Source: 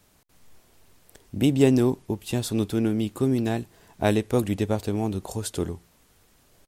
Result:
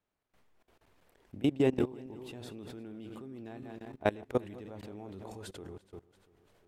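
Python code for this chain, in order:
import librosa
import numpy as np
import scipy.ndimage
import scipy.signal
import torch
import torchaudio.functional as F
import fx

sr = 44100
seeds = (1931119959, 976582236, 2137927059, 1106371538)

y = fx.reverse_delay_fb(x, sr, ms=172, feedback_pct=57, wet_db=-11)
y = fx.bass_treble(y, sr, bass_db=-6, treble_db=-14)
y = fx.level_steps(y, sr, step_db=21)
y = F.gain(torch.from_numpy(y), -3.0).numpy()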